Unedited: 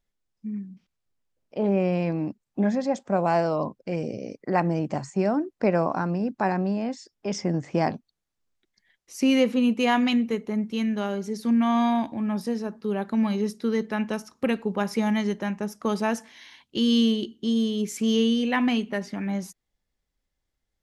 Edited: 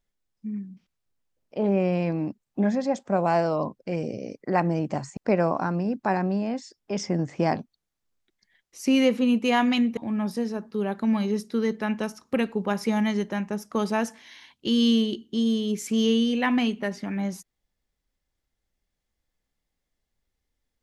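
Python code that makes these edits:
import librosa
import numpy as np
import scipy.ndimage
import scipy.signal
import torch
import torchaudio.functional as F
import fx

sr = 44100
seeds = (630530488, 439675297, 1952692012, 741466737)

y = fx.edit(x, sr, fx.cut(start_s=5.17, length_s=0.35),
    fx.cut(start_s=10.32, length_s=1.75), tone=tone)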